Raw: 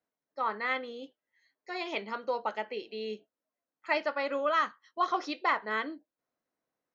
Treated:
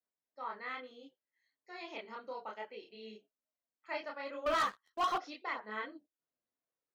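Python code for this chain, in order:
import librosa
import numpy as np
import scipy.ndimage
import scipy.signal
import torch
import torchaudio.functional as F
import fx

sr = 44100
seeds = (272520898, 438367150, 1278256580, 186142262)

y = fx.chorus_voices(x, sr, voices=4, hz=0.64, base_ms=28, depth_ms=4.3, mix_pct=50)
y = fx.leveller(y, sr, passes=3, at=(4.46, 5.18))
y = y * 10.0 ** (-7.0 / 20.0)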